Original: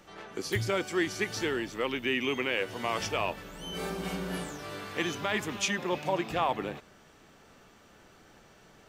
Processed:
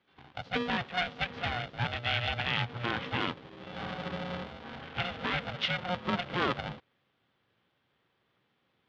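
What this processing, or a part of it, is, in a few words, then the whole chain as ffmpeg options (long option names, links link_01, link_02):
ring modulator pedal into a guitar cabinet: -af "afwtdn=0.0141,aeval=exprs='val(0)*sgn(sin(2*PI*360*n/s))':channel_layout=same,highpass=94,equalizer=frequency=120:width_type=q:width=4:gain=6,equalizer=frequency=640:width_type=q:width=4:gain=-5,equalizer=frequency=920:width_type=q:width=4:gain=-4,equalizer=frequency=3300:width_type=q:width=4:gain=6,lowpass=frequency=4200:width=0.5412,lowpass=frequency=4200:width=1.3066,equalizer=frequency=10000:width=0.31:gain=-3"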